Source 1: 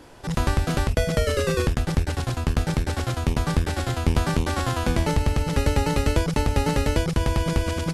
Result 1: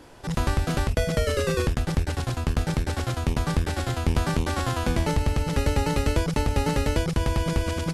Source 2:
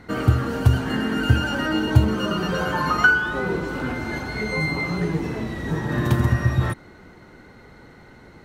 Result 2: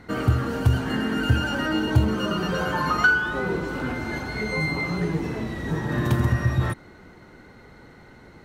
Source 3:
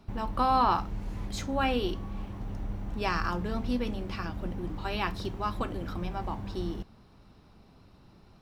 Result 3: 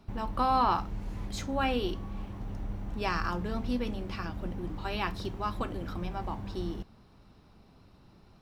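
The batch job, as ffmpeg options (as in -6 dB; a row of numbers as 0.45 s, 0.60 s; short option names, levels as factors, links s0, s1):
-af "acontrast=43,volume=0.447"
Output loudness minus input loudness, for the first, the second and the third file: -1.5 LU, -2.0 LU, -1.5 LU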